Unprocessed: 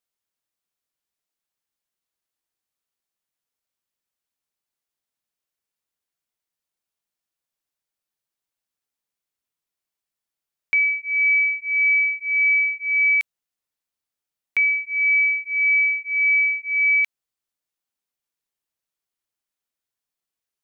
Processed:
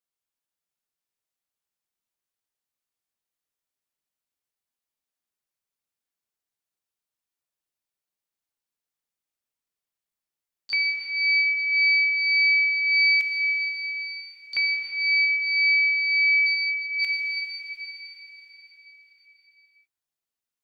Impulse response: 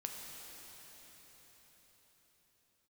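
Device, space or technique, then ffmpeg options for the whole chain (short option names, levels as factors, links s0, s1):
shimmer-style reverb: -filter_complex "[0:a]asplit=3[s0][s1][s2];[s0]afade=t=out:st=16.46:d=0.02[s3];[s1]lowpass=1900,afade=t=in:st=16.46:d=0.02,afade=t=out:st=17:d=0.02[s4];[s2]afade=t=in:st=17:d=0.02[s5];[s3][s4][s5]amix=inputs=3:normalize=0,asplit=2[s6][s7];[s7]asetrate=88200,aresample=44100,atempo=0.5,volume=0.398[s8];[s6][s8]amix=inputs=2:normalize=0[s9];[1:a]atrim=start_sample=2205[s10];[s9][s10]afir=irnorm=-1:irlink=0,volume=0.75"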